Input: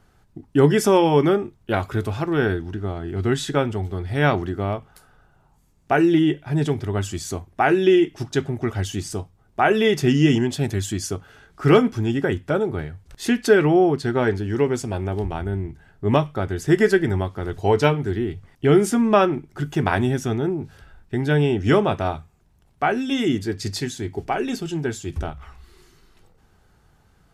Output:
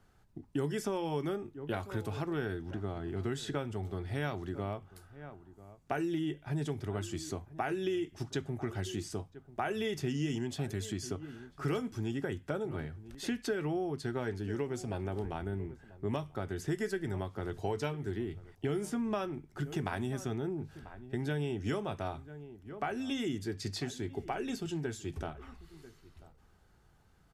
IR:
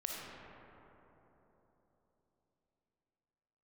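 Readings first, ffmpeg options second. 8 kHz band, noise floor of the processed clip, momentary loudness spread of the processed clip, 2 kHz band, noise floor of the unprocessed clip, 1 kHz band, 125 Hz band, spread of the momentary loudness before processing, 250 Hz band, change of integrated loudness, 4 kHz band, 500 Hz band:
-13.0 dB, -64 dBFS, 10 LU, -16.0 dB, -59 dBFS, -16.0 dB, -14.0 dB, 13 LU, -15.0 dB, -15.5 dB, -13.0 dB, -16.5 dB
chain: -filter_complex "[0:a]asplit=2[s0][s1];[s1]adelay=991.3,volume=0.0891,highshelf=f=4000:g=-22.3[s2];[s0][s2]amix=inputs=2:normalize=0,acrossover=split=100|5100[s3][s4][s5];[s3]acompressor=threshold=0.0112:ratio=4[s6];[s4]acompressor=threshold=0.0562:ratio=4[s7];[s5]acompressor=threshold=0.00891:ratio=4[s8];[s6][s7][s8]amix=inputs=3:normalize=0,volume=0.398"

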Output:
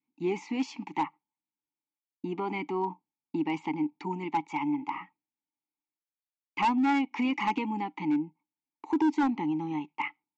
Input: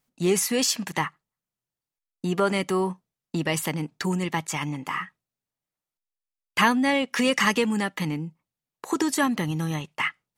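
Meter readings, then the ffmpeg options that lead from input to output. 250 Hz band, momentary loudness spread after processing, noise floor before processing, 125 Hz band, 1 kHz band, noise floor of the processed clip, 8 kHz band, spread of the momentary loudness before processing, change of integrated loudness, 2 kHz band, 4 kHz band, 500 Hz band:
-2.5 dB, 10 LU, under -85 dBFS, -13.0 dB, -1.5 dB, under -85 dBFS, under -25 dB, 11 LU, -5.5 dB, -10.5 dB, -15.0 dB, -9.5 dB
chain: -filter_complex "[0:a]acontrast=38,asplit=3[s0][s1][s2];[s0]bandpass=f=300:t=q:w=8,volume=1[s3];[s1]bandpass=f=870:t=q:w=8,volume=0.501[s4];[s2]bandpass=f=2240:t=q:w=8,volume=0.355[s5];[s3][s4][s5]amix=inputs=3:normalize=0,adynamicequalizer=threshold=0.00501:dfrequency=840:dqfactor=1.9:tfrequency=840:tqfactor=1.9:attack=5:release=100:ratio=0.375:range=3.5:mode=boostabove:tftype=bell,aresample=16000,asoftclip=type=hard:threshold=0.0891,aresample=44100"

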